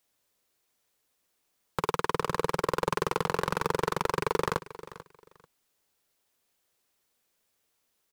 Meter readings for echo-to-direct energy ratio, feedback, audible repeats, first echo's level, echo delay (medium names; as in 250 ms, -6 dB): -16.5 dB, 21%, 2, -16.5 dB, 440 ms